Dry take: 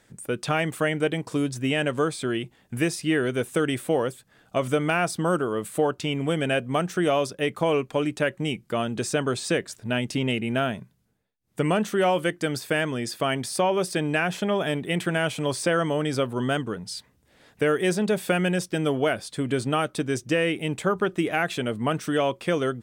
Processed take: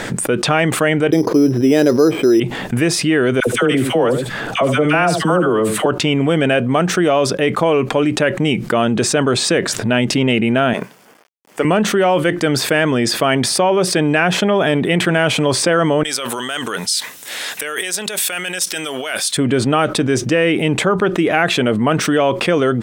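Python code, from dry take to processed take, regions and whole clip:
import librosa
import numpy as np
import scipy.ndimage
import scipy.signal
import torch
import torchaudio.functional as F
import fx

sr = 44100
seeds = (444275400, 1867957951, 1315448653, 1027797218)

y = fx.chain(x, sr, fx.peak_eq(hz=360.0, db=15.0, octaves=1.3),
    fx.resample_bad(factor=8, down='filtered', up='hold'), at=(1.12, 2.4))
y = fx.chain(y, sr, fx.dispersion(late='lows', ms=68.0, hz=920.0),
    fx.echo_single(ms=75, db=-15.0), at=(3.4, 5.86))
y = fx.chain(y, sr, fx.law_mismatch(coded='A'),
    fx.highpass(hz=390.0, slope=12),
    fx.peak_eq(hz=3900.0, db=-9.5, octaves=0.21), at=(10.73, 11.65))
y = fx.chain(y, sr, fx.notch(hz=4700.0, q=17.0),
    fx.over_compress(threshold_db=-33.0, ratio=-1.0),
    fx.differentiator(), at=(16.03, 19.37))
y = fx.lowpass(y, sr, hz=3300.0, slope=6)
y = fx.peak_eq(y, sr, hz=64.0, db=-11.0, octaves=1.4)
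y = fx.env_flatten(y, sr, amount_pct=70)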